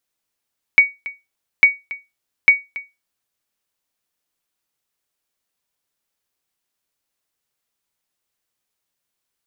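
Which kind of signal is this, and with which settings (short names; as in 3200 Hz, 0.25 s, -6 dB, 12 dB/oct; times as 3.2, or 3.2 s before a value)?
sonar ping 2250 Hz, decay 0.22 s, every 0.85 s, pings 3, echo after 0.28 s, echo -19 dB -1.5 dBFS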